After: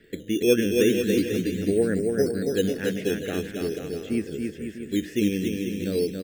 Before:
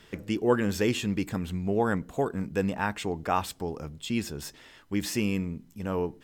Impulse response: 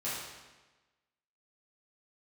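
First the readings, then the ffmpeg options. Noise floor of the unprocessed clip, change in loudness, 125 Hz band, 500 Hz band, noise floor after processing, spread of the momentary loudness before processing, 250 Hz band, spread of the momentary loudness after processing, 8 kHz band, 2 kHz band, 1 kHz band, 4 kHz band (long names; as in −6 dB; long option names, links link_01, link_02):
−56 dBFS, +4.5 dB, +0.5 dB, +6.5 dB, −42 dBFS, 10 LU, +5.0 dB, 9 LU, +3.0 dB, +1.0 dB, −15.0 dB, +3.5 dB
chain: -filter_complex "[0:a]firequalizer=gain_entry='entry(120,0);entry(300,9);entry(470,9);entry(930,-24);entry(1700,5);entry(4200,-13)':delay=0.05:min_phase=1,acrossover=split=720|1700[link_01][link_02][link_03];[link_01]acrusher=samples=10:mix=1:aa=0.000001:lfo=1:lforange=10:lforate=0.42[link_04];[link_04][link_02][link_03]amix=inputs=3:normalize=0,aecho=1:1:280|490|647.5|765.6|854.2:0.631|0.398|0.251|0.158|0.1,volume=-3.5dB"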